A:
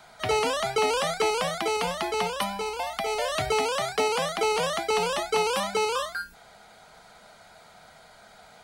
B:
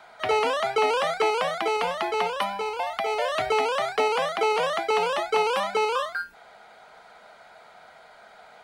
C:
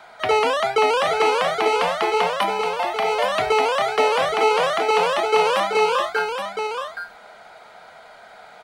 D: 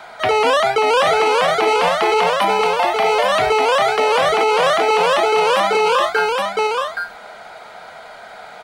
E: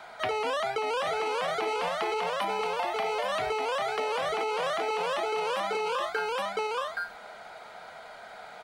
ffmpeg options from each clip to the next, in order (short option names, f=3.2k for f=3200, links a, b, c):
-af "bass=f=250:g=-13,treble=f=4k:g=-12,volume=3dB"
-af "aecho=1:1:821:0.473,volume=4.5dB"
-af "alimiter=limit=-14.5dB:level=0:latency=1:release=21,volume=7.5dB"
-af "acompressor=threshold=-18dB:ratio=6,volume=-8.5dB"